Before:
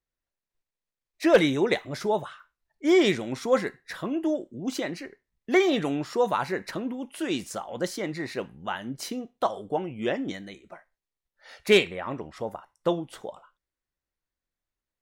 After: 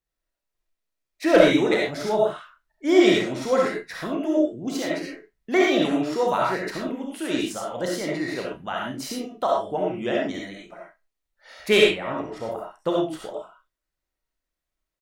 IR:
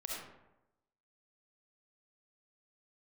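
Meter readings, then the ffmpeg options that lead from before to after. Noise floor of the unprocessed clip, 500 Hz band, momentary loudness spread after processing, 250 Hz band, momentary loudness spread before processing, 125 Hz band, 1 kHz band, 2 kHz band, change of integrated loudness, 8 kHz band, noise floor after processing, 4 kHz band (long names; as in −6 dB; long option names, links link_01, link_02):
below −85 dBFS, +4.0 dB, 15 LU, +4.0 dB, 15 LU, +1.0 dB, +4.0 dB, +4.0 dB, +3.5 dB, +3.5 dB, −85 dBFS, +4.0 dB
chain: -filter_complex "[0:a]asplit=2[link_01][link_02];[link_02]adelay=32,volume=-9dB[link_03];[link_01][link_03]amix=inputs=2:normalize=0[link_04];[1:a]atrim=start_sample=2205,afade=type=out:start_time=0.18:duration=0.01,atrim=end_sample=8379[link_05];[link_04][link_05]afir=irnorm=-1:irlink=0,volume=4dB"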